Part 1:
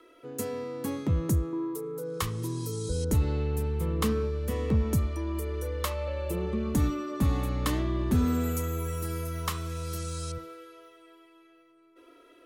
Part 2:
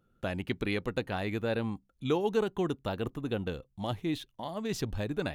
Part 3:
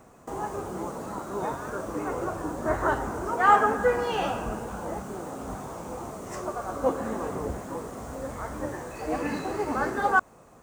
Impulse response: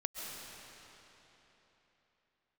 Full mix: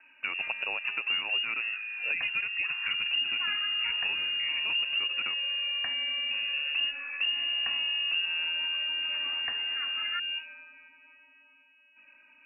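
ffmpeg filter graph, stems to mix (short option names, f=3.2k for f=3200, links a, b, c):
-filter_complex "[0:a]lowshelf=f=94:g=11.5,volume=-2.5dB[a];[1:a]volume=2.5dB[b];[2:a]highpass=f=940:w=0.5412,highpass=f=940:w=1.3066,volume=-10.5dB[c];[a][b][c]amix=inputs=3:normalize=0,lowpass=f=2.5k:t=q:w=0.5098,lowpass=f=2.5k:t=q:w=0.6013,lowpass=f=2.5k:t=q:w=0.9,lowpass=f=2.5k:t=q:w=2.563,afreqshift=-2900,acrossover=split=330|1900[d][e][f];[d]acompressor=threshold=-57dB:ratio=4[g];[e]acompressor=threshold=-37dB:ratio=4[h];[f]acompressor=threshold=-32dB:ratio=4[i];[g][h][i]amix=inputs=3:normalize=0"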